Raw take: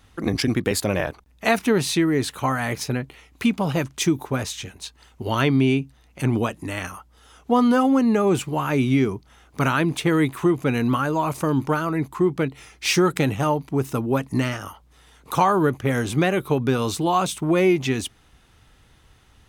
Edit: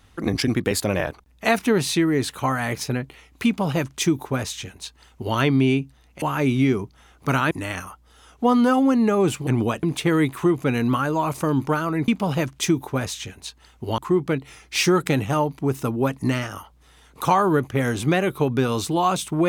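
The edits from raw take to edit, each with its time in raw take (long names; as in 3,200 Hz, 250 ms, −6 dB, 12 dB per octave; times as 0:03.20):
0:03.46–0:05.36: duplicate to 0:12.08
0:06.22–0:06.58: swap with 0:08.54–0:09.83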